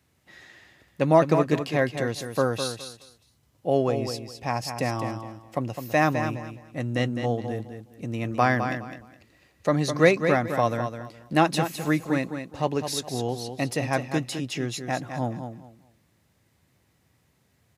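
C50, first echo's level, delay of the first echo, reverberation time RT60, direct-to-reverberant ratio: no reverb audible, −8.0 dB, 208 ms, no reverb audible, no reverb audible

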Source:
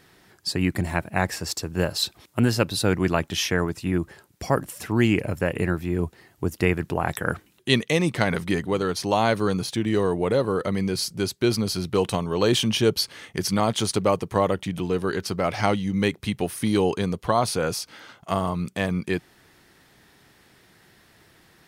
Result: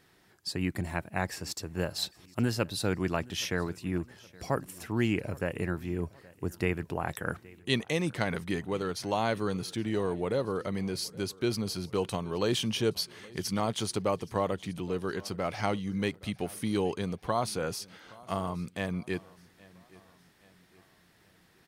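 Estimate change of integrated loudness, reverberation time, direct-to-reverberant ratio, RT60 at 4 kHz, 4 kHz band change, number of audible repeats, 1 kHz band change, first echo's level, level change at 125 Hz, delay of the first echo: −8.0 dB, no reverb audible, no reverb audible, no reverb audible, −8.0 dB, 2, −8.0 dB, −23.0 dB, −8.0 dB, 820 ms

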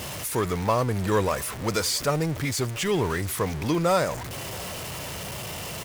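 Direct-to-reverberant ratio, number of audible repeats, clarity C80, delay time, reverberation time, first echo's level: no reverb audible, 1, no reverb audible, 685 ms, no reverb audible, −24.0 dB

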